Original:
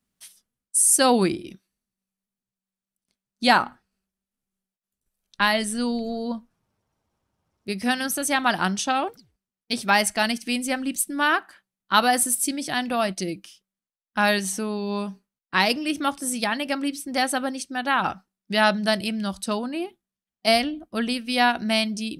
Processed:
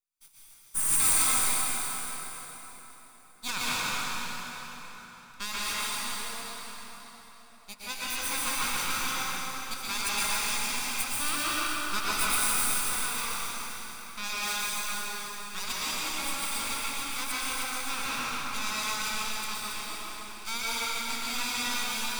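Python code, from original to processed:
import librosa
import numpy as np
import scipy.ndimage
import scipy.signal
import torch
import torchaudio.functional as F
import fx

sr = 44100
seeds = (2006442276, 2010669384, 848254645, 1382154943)

y = fx.lower_of_two(x, sr, delay_ms=0.83)
y = scipy.signal.sosfilt(scipy.signal.butter(2, 1200.0, 'highpass', fs=sr, output='sos'), y)
y = fx.echo_alternate(y, sr, ms=138, hz=2300.0, feedback_pct=58, wet_db=-2.5)
y = np.maximum(y, 0.0)
y = fx.high_shelf(y, sr, hz=5400.0, db=7.5)
y = fx.rev_plate(y, sr, seeds[0], rt60_s=4.3, hf_ratio=0.75, predelay_ms=105, drr_db=-7.5)
y = y * 10.0 ** (-9.0 / 20.0)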